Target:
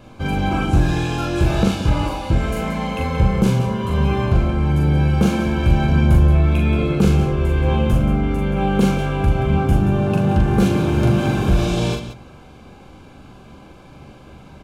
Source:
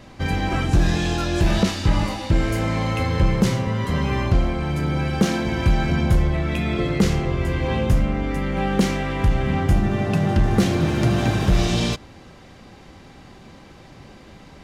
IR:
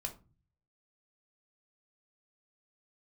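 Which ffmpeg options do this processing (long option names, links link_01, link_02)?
-filter_complex "[0:a]asuperstop=centerf=1900:order=8:qfactor=5.9,equalizer=frequency=5100:width=1.1:gain=-7,aecho=1:1:40.82|177.8:0.708|0.316,asplit=2[link_01][link_02];[1:a]atrim=start_sample=2205,adelay=13[link_03];[link_02][link_03]afir=irnorm=-1:irlink=0,volume=-12.5dB[link_04];[link_01][link_04]amix=inputs=2:normalize=0"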